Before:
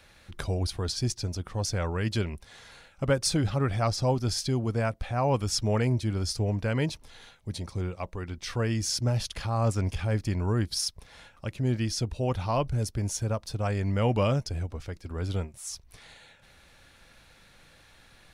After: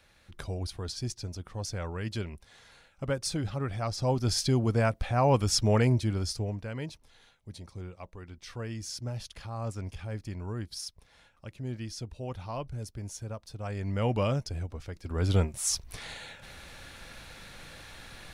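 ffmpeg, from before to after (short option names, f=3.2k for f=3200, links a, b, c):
-af "volume=20.5dB,afade=t=in:st=3.89:d=0.53:silence=0.398107,afade=t=out:st=5.83:d=0.82:silence=0.266073,afade=t=in:st=13.57:d=0.47:silence=0.473151,afade=t=in:st=14.94:d=0.71:silence=0.251189"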